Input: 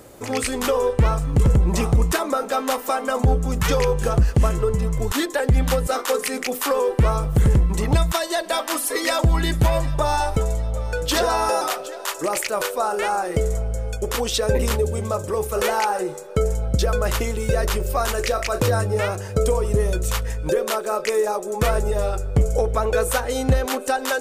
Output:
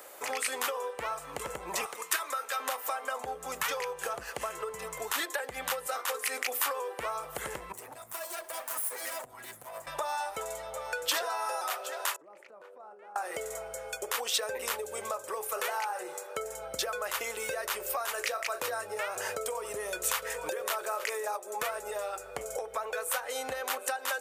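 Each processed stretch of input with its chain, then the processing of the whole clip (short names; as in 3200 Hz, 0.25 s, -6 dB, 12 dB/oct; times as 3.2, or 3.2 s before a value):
1.86–2.6 HPF 470 Hz + bell 700 Hz -11 dB 0.99 oct
7.72–9.87 minimum comb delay 7.9 ms + EQ curve 120 Hz 0 dB, 3800 Hz -14 dB, 10000 Hz -2 dB + compressor 12:1, threshold -30 dBFS
12.16–13.16 band-pass 200 Hz, Q 2.2 + compressor 10:1, threshold -40 dBFS
19.16–21.37 echo 0.861 s -15.5 dB + fast leveller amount 50%
whole clip: three-band isolator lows -19 dB, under 470 Hz, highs -13 dB, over 2800 Hz; compressor, threshold -31 dBFS; RIAA curve recording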